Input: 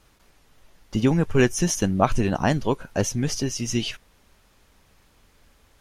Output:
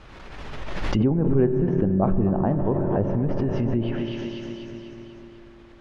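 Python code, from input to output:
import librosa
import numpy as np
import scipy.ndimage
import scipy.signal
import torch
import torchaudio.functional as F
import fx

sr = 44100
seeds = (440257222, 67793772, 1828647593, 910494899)

p1 = scipy.signal.sosfilt(scipy.signal.butter(2, 3000.0, 'lowpass', fs=sr, output='sos'), x)
p2 = p1 + fx.echo_feedback(p1, sr, ms=246, feedback_pct=59, wet_db=-14, dry=0)
p3 = fx.rev_fdn(p2, sr, rt60_s=4.0, lf_ratio=1.0, hf_ratio=0.7, size_ms=16.0, drr_db=10.0)
p4 = fx.over_compress(p3, sr, threshold_db=-28.0, ratio=-0.5)
p5 = p3 + (p4 * 10.0 ** (-2.5 / 20.0))
p6 = fx.env_lowpass_down(p5, sr, base_hz=690.0, full_db=-16.5)
p7 = fx.pre_swell(p6, sr, db_per_s=28.0)
y = p7 * 10.0 ** (-2.0 / 20.0)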